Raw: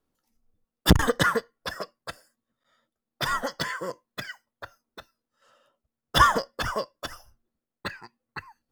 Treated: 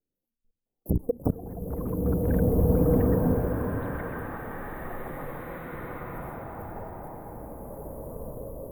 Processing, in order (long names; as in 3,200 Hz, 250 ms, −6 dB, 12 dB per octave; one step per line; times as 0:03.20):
inverse Chebyshev band-stop filter 1,500–5,500 Hz, stop band 60 dB
mains-hum notches 60/120/180/240/300/360/420 Hz
delay with pitch and tempo change per echo 661 ms, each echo +7 semitones, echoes 3
output level in coarse steps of 22 dB
slow-attack reverb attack 1,940 ms, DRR −9.5 dB